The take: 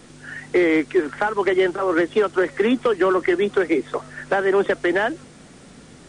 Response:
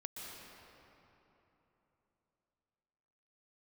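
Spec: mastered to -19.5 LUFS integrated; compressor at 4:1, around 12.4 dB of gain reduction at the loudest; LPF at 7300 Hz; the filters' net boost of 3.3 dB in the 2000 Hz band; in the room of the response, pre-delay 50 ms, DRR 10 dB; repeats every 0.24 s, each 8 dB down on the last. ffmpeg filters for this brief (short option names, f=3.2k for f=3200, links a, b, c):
-filter_complex "[0:a]lowpass=7.3k,equalizer=f=2k:t=o:g=4,acompressor=threshold=-29dB:ratio=4,aecho=1:1:240|480|720|960|1200:0.398|0.159|0.0637|0.0255|0.0102,asplit=2[a][b];[1:a]atrim=start_sample=2205,adelay=50[c];[b][c]afir=irnorm=-1:irlink=0,volume=-8.5dB[d];[a][d]amix=inputs=2:normalize=0,volume=10.5dB"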